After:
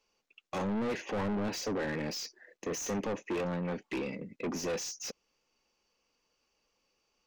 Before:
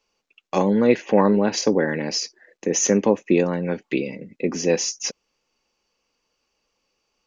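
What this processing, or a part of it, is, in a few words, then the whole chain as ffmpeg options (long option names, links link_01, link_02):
saturation between pre-emphasis and de-emphasis: -af "highshelf=frequency=2900:gain=9,asoftclip=type=tanh:threshold=-26dB,highshelf=frequency=2900:gain=-9,volume=-4dB"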